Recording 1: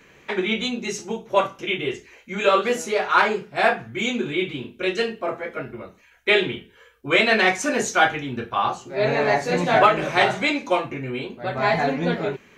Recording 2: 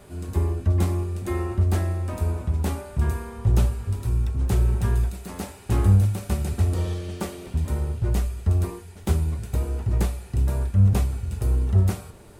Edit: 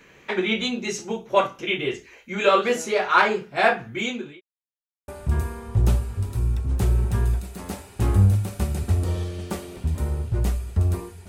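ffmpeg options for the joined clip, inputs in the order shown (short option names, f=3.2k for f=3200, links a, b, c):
-filter_complex "[0:a]apad=whole_dur=11.28,atrim=end=11.28,asplit=2[a][b];[a]atrim=end=4.41,asetpts=PTS-STARTPTS,afade=t=out:st=3.93:d=0.48[c];[b]atrim=start=4.41:end=5.08,asetpts=PTS-STARTPTS,volume=0[d];[1:a]atrim=start=2.78:end=8.98,asetpts=PTS-STARTPTS,afade=t=in:d=0.004:c=hsin[e];[c][d][e]concat=n=3:v=0:a=1"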